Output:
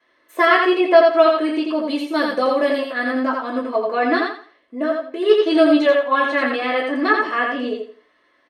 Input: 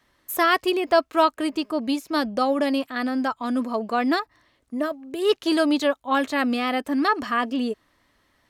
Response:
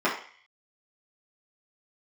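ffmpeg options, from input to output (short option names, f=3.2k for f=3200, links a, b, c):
-filter_complex "[0:a]asetnsamples=n=441:p=0,asendcmd='1.72 equalizer g 3.5;3.11 equalizer g -9.5',equalizer=f=12k:t=o:w=0.92:g=-10,aecho=1:1:85|170|255|340:0.668|0.174|0.0452|0.0117[a];[1:a]atrim=start_sample=2205,atrim=end_sample=3528,asetrate=74970,aresample=44100[b];[a][b]afir=irnorm=-1:irlink=0,volume=-7.5dB"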